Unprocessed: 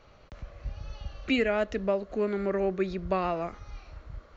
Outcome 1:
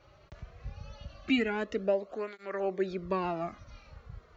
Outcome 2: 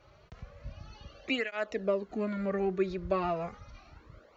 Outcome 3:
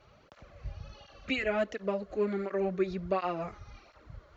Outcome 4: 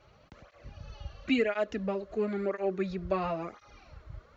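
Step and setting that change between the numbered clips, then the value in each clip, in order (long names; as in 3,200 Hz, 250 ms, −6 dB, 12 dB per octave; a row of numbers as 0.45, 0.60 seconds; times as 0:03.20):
through-zero flanger with one copy inverted, nulls at: 0.21, 0.33, 1.4, 0.97 Hertz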